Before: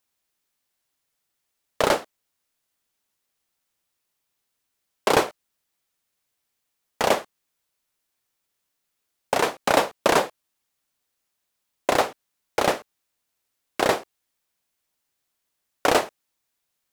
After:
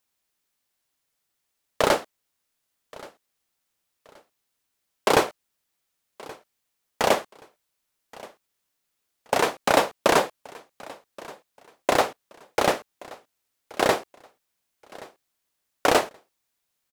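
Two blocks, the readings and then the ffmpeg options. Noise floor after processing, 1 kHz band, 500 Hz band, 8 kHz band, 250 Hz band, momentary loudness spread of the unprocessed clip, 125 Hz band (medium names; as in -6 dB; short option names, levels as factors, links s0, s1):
-79 dBFS, 0.0 dB, 0.0 dB, 0.0 dB, 0.0 dB, 10 LU, 0.0 dB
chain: -af "aecho=1:1:1126|2252:0.0841|0.0252"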